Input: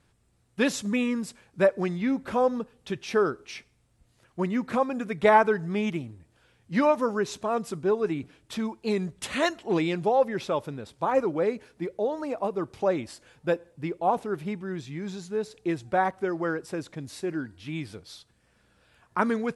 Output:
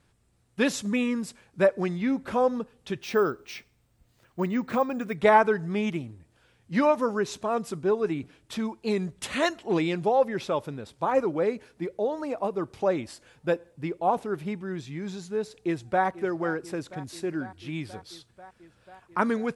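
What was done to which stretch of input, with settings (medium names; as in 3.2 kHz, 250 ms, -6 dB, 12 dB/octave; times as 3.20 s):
3.02–5.15 s: careless resampling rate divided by 2×, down filtered, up hold
15.55–16.05 s: echo throw 490 ms, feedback 80%, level -16.5 dB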